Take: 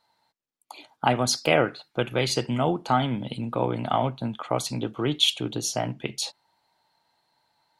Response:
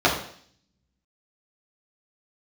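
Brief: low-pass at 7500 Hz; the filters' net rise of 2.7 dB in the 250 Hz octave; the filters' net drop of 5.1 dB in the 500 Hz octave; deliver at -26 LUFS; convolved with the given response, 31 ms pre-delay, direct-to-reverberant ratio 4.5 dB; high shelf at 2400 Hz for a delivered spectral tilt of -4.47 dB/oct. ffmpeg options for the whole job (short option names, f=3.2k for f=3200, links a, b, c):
-filter_complex "[0:a]lowpass=7.5k,equalizer=f=250:t=o:g=5.5,equalizer=f=500:t=o:g=-8,highshelf=f=2.4k:g=-3.5,asplit=2[a][b];[1:a]atrim=start_sample=2205,adelay=31[c];[b][c]afir=irnorm=-1:irlink=0,volume=-24.5dB[d];[a][d]amix=inputs=2:normalize=0"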